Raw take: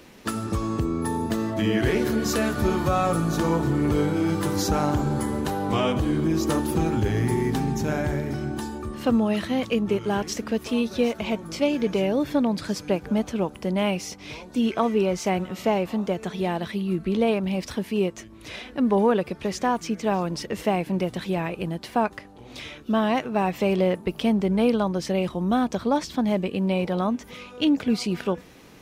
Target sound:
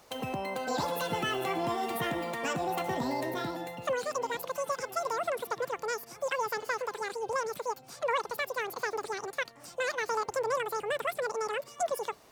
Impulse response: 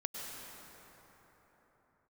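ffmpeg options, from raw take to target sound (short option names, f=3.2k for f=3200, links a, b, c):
-af "asetrate=103194,aresample=44100,volume=-9dB"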